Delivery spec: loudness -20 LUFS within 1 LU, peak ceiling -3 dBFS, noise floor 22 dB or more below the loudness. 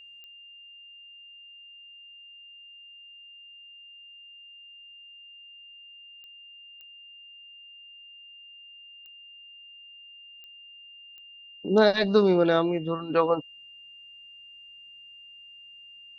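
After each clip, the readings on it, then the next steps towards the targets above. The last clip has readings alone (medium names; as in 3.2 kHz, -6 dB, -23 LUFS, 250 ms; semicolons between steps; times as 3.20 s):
clicks found 6; steady tone 2.8 kHz; tone level -46 dBFS; loudness -23.5 LUFS; peak level -7.5 dBFS; loudness target -20.0 LUFS
-> de-click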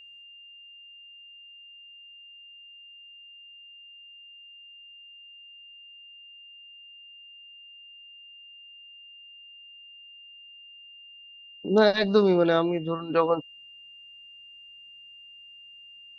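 clicks found 0; steady tone 2.8 kHz; tone level -46 dBFS
-> band-stop 2.8 kHz, Q 30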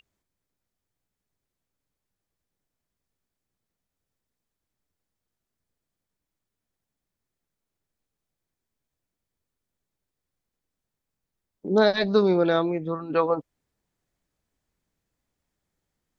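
steady tone not found; loudness -23.0 LUFS; peak level -7.5 dBFS; loudness target -20.0 LUFS
-> trim +3 dB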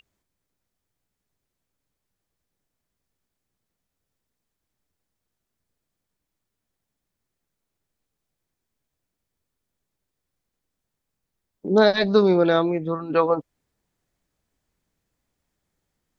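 loudness -20.0 LUFS; peak level -4.5 dBFS; noise floor -83 dBFS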